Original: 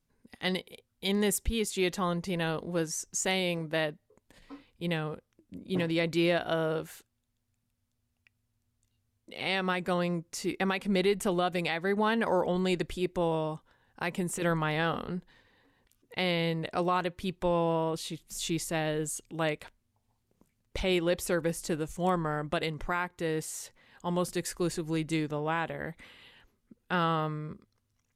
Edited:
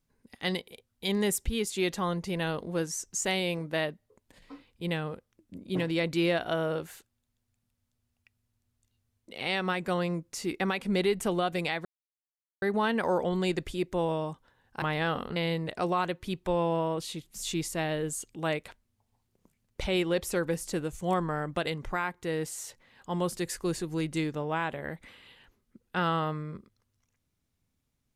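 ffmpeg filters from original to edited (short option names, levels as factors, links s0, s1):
-filter_complex "[0:a]asplit=4[s0][s1][s2][s3];[s0]atrim=end=11.85,asetpts=PTS-STARTPTS,afade=t=out:st=11.846:d=0.004:c=hsin,apad=pad_dur=0.77[s4];[s1]atrim=start=11.85:end=14.052,asetpts=PTS-STARTPTS,afade=t=in:d=0.004:c=hsin[s5];[s2]atrim=start=14.598:end=15.142[s6];[s3]atrim=start=16.318[s7];[s4][s5]concat=n=2:v=0:a=1[s8];[s8][s6]acrossfade=d=0.004:c1=hsin:c2=hsin[s9];[s9][s7]acrossfade=d=0.004:c1=hsin:c2=hsin"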